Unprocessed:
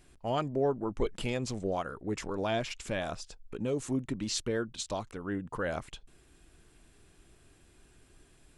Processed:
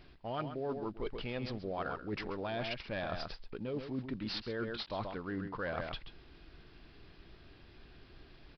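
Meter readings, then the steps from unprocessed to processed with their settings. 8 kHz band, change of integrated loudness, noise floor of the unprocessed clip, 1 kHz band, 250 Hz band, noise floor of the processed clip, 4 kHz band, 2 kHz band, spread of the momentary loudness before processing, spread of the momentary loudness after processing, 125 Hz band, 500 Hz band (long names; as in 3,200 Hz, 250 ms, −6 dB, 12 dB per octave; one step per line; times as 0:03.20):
below −25 dB, −5.5 dB, −62 dBFS, −4.0 dB, −5.5 dB, −59 dBFS, −3.0 dB, −2.0 dB, 7 LU, 20 LU, −5.0 dB, −6.0 dB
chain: variable-slope delta modulation 64 kbit/s
single-tap delay 133 ms −11 dB
downsampling to 11,025 Hz
reversed playback
downward compressor 6 to 1, threshold −40 dBFS, peak gain reduction 15 dB
reversed playback
dynamic equaliser 1,500 Hz, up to +3 dB, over −59 dBFS, Q 1.2
level +4 dB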